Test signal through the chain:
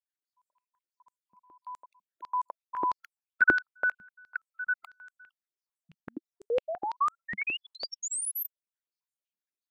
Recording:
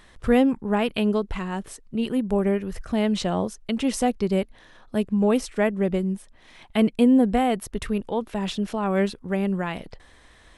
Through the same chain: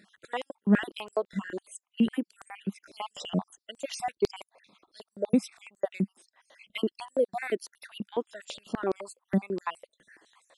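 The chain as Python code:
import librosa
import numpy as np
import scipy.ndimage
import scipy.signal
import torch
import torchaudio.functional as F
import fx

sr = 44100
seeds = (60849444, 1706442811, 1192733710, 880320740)

y = fx.spec_dropout(x, sr, seeds[0], share_pct=50)
y = fx.filter_held_highpass(y, sr, hz=12.0, low_hz=200.0, high_hz=7700.0)
y = F.gain(torch.from_numpy(y), -6.0).numpy()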